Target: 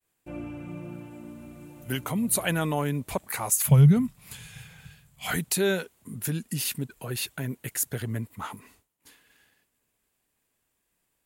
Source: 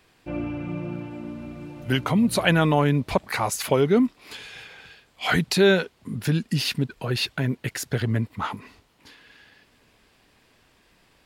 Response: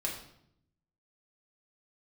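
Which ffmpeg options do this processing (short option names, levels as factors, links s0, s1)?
-filter_complex "[0:a]aexciter=amount=8:drive=1.1:freq=6800,asettb=1/sr,asplit=3[s0][s1][s2];[s0]atrim=end=3.654[s3];[s1]atrim=start=3.65:end=5.31,asetpts=PTS-STARTPTS,afade=t=in:d=0.004:c=qsin,afade=t=out:st=1.656:d=0.004:c=qsin,lowshelf=f=220:t=q:w=3:g=13.5[s4];[s2]atrim=start=5.306[s5];[s3][s4]acrossfade=d=0.004:c1=hsin:c2=qsin[s6];[s6][s5]acrossfade=d=0.004:c1=qsin:c2=hsin,agate=range=0.0224:threshold=0.00447:ratio=3:detection=peak,volume=0.422"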